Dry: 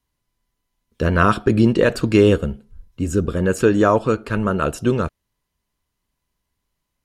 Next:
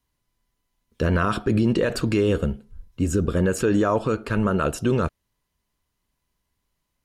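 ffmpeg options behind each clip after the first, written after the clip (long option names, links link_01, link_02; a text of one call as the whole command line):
ffmpeg -i in.wav -af "alimiter=limit=-12dB:level=0:latency=1:release=36" out.wav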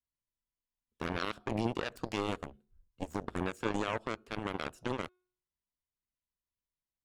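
ffmpeg -i in.wav -af "bandreject=frequency=363.6:width_type=h:width=4,bandreject=frequency=727.2:width_type=h:width=4,bandreject=frequency=1090.8:width_type=h:width=4,bandreject=frequency=1454.4:width_type=h:width=4,bandreject=frequency=1818:width_type=h:width=4,bandreject=frequency=2181.6:width_type=h:width=4,bandreject=frequency=2545.2:width_type=h:width=4,bandreject=frequency=2908.8:width_type=h:width=4,bandreject=frequency=3272.4:width_type=h:width=4,bandreject=frequency=3636:width_type=h:width=4,bandreject=frequency=3999.6:width_type=h:width=4,bandreject=frequency=4363.2:width_type=h:width=4,bandreject=frequency=4726.8:width_type=h:width=4,bandreject=frequency=5090.4:width_type=h:width=4,aeval=exprs='0.282*(cos(1*acos(clip(val(0)/0.282,-1,1)))-cos(1*PI/2))+0.112*(cos(3*acos(clip(val(0)/0.282,-1,1)))-cos(3*PI/2))':channel_layout=same,volume=-8.5dB" out.wav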